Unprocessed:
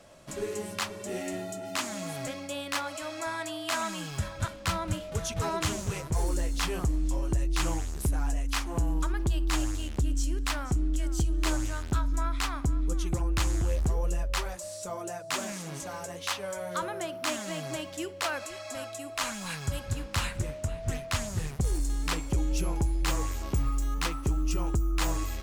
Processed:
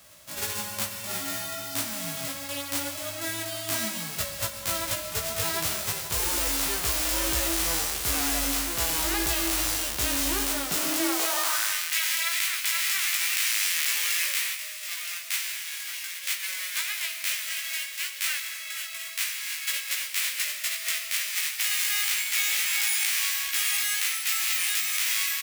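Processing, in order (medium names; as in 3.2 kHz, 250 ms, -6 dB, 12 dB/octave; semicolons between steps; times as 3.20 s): formants flattened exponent 0.1; in parallel at -1 dB: compressor with a negative ratio -29 dBFS, ratio -1; on the sum: doubling 18 ms -2.5 dB; high-pass sweep 72 Hz -> 2.1 kHz, 10.38–11.79 s; plate-style reverb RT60 1 s, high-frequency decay 0.95×, pre-delay 105 ms, DRR 9.5 dB; trim -6.5 dB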